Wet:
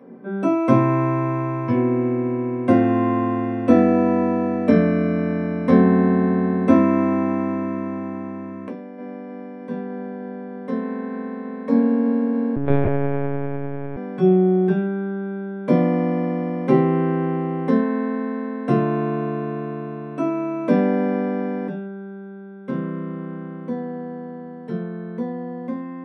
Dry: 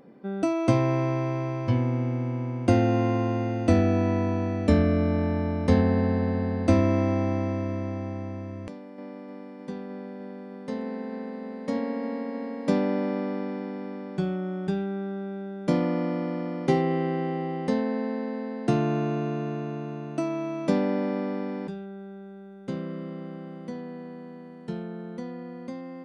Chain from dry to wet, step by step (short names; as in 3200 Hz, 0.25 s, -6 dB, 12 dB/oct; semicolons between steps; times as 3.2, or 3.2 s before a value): reverb RT60 0.40 s, pre-delay 3 ms, DRR -2.5 dB; 12.56–13.97 monotone LPC vocoder at 8 kHz 140 Hz; gain -8 dB